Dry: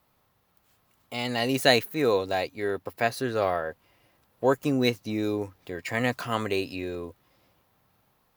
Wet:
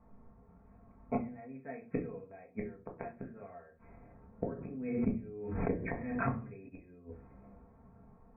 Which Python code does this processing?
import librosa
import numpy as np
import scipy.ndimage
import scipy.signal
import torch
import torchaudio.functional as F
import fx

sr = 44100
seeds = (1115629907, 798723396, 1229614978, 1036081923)

y = fx.env_lowpass(x, sr, base_hz=1000.0, full_db=-19.5)
y = fx.low_shelf(y, sr, hz=270.0, db=10.5)
y = y + 0.34 * np.pad(y, (int(4.4 * sr / 1000.0), 0))[:len(y)]
y = fx.gate_flip(y, sr, shuts_db=-21.0, range_db=-33)
y = fx.brickwall_lowpass(y, sr, high_hz=2600.0)
y = fx.room_shoebox(y, sr, seeds[0], volume_m3=190.0, walls='furnished', distance_m=1.6)
y = fx.pre_swell(y, sr, db_per_s=43.0, at=(4.52, 6.68), fade=0.02)
y = y * 10.0 ** (1.0 / 20.0)